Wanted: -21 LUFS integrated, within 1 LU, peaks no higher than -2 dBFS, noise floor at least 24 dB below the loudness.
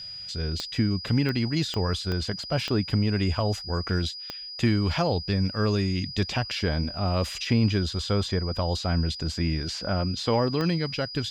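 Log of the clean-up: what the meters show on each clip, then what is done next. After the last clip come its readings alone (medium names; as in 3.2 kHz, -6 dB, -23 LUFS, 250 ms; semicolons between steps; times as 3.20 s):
clicks found 8; steady tone 4.9 kHz; tone level -36 dBFS; loudness -26.5 LUFS; peak level -10.5 dBFS; loudness target -21.0 LUFS
-> de-click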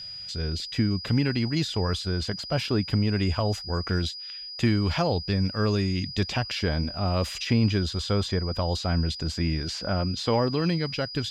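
clicks found 0; steady tone 4.9 kHz; tone level -36 dBFS
-> band-stop 4.9 kHz, Q 30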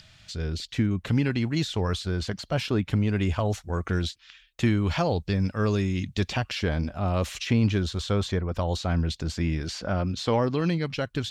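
steady tone not found; loudness -27.0 LUFS; peak level -11.0 dBFS; loudness target -21.0 LUFS
-> trim +6 dB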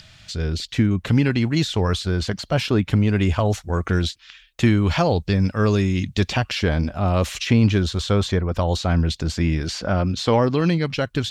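loudness -21.0 LUFS; peak level -5.0 dBFS; noise floor -51 dBFS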